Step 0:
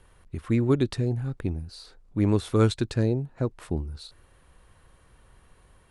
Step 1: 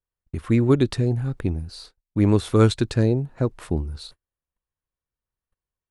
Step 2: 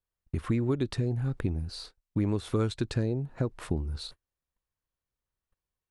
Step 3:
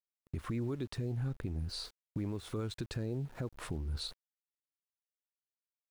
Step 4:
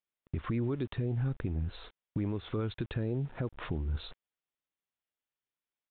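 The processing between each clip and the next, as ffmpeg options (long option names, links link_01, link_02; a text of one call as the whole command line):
ffmpeg -i in.wav -af "agate=range=-40dB:threshold=-47dB:ratio=16:detection=peak,volume=4.5dB" out.wav
ffmpeg -i in.wav -af "highshelf=frequency=7300:gain=-4,acompressor=threshold=-26dB:ratio=4" out.wav
ffmpeg -i in.wav -af "alimiter=level_in=4dB:limit=-24dB:level=0:latency=1:release=295,volume=-4dB,aeval=exprs='val(0)*gte(abs(val(0)),0.00188)':channel_layout=same" out.wav
ffmpeg -i in.wav -af "aresample=8000,aresample=44100,volume=4dB" out.wav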